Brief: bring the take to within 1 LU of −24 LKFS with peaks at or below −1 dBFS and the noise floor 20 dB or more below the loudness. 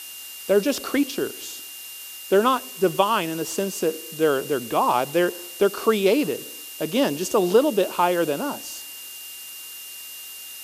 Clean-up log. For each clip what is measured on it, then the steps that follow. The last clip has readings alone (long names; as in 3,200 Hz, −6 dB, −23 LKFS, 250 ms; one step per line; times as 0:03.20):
interfering tone 2,800 Hz; level of the tone −41 dBFS; background noise floor −38 dBFS; target noise floor −43 dBFS; integrated loudness −22.5 LKFS; sample peak −4.0 dBFS; target loudness −24.0 LKFS
→ notch filter 2,800 Hz, Q 30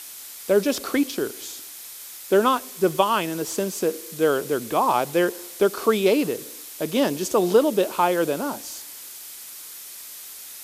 interfering tone none found; background noise floor −40 dBFS; target noise floor −43 dBFS
→ noise reduction from a noise print 6 dB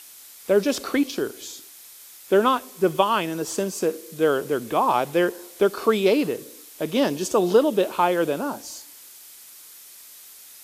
background noise floor −46 dBFS; integrated loudness −23.0 LKFS; sample peak −4.0 dBFS; target loudness −24.0 LKFS
→ level −1 dB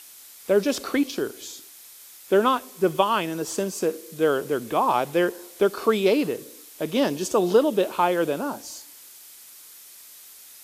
integrated loudness −24.0 LKFS; sample peak −5.0 dBFS; background noise floor −47 dBFS